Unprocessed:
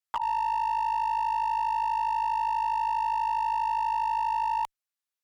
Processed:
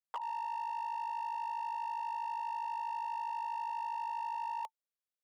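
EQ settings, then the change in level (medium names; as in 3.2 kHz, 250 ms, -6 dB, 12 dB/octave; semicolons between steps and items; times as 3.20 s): ladder high-pass 410 Hz, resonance 55%; band-stop 890 Hz, Q 25; 0.0 dB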